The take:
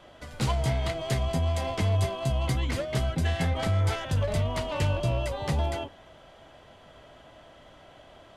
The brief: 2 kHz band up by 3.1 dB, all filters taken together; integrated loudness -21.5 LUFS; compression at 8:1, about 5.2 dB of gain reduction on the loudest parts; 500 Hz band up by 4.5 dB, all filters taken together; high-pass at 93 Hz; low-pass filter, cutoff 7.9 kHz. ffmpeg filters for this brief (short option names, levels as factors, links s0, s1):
-af "highpass=93,lowpass=7900,equalizer=f=500:t=o:g=6,equalizer=f=2000:t=o:g=3.5,acompressor=threshold=0.0447:ratio=8,volume=3.35"